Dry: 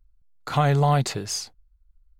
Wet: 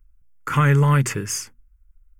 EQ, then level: low shelf 380 Hz -3.5 dB; notches 60/120/180/240 Hz; fixed phaser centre 1700 Hz, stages 4; +8.5 dB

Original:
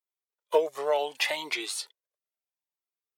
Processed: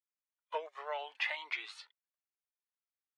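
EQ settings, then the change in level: HPF 1400 Hz 12 dB/oct; LPF 1900 Hz 12 dB/oct; 0.0 dB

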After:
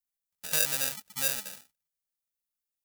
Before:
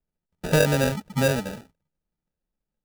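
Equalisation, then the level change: pre-emphasis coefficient 0.8; tilt shelf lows -8.5 dB, about 670 Hz; bell 380 Hz -7.5 dB 0.26 oct; -4.0 dB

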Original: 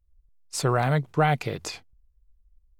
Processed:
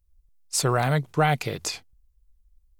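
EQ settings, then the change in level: high shelf 4000 Hz +8.5 dB; 0.0 dB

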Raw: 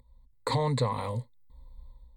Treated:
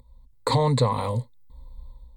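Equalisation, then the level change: bell 1900 Hz -4.5 dB 0.64 oct; +6.5 dB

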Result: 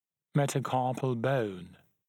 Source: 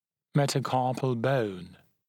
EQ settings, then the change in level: Butterworth band-stop 4600 Hz, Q 3; -2.5 dB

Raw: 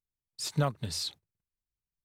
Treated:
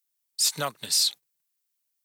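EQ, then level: HPF 150 Hz 12 dB/oct; tilt +4 dB/oct; +3.0 dB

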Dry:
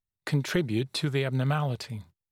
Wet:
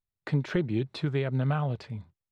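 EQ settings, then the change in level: tape spacing loss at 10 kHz 23 dB; 0.0 dB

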